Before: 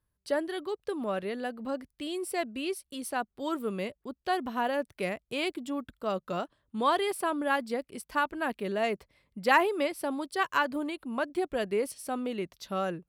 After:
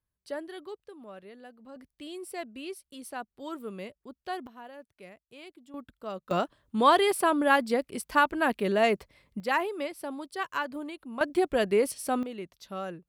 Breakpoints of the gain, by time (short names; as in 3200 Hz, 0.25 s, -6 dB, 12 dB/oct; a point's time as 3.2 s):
-7 dB
from 0.87 s -14 dB
from 1.76 s -6 dB
from 4.47 s -16.5 dB
from 5.74 s -6 dB
from 6.31 s +5.5 dB
from 9.4 s -4.5 dB
from 11.21 s +5 dB
from 12.23 s -5 dB